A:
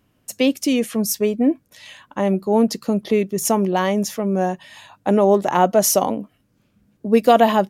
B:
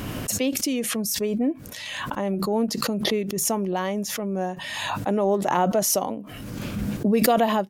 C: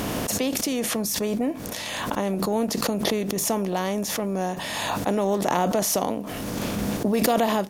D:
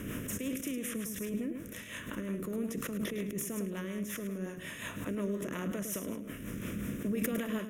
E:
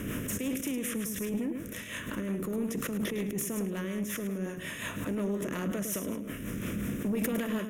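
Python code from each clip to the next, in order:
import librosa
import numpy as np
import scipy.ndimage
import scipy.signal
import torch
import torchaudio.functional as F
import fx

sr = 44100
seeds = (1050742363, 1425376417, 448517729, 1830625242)

y1 = fx.pre_swell(x, sr, db_per_s=26.0)
y1 = y1 * 10.0 ** (-7.5 / 20.0)
y2 = fx.bin_compress(y1, sr, power=0.6)
y2 = y2 * 10.0 ** (-4.0 / 20.0)
y3 = fx.fixed_phaser(y2, sr, hz=1900.0, stages=4)
y3 = fx.echo_feedback(y3, sr, ms=106, feedback_pct=27, wet_db=-7.5)
y3 = fx.rotary(y3, sr, hz=5.5)
y3 = y3 * 10.0 ** (-7.5 / 20.0)
y4 = 10.0 ** (-28.0 / 20.0) * np.tanh(y3 / 10.0 ** (-28.0 / 20.0))
y4 = y4 * 10.0 ** (4.5 / 20.0)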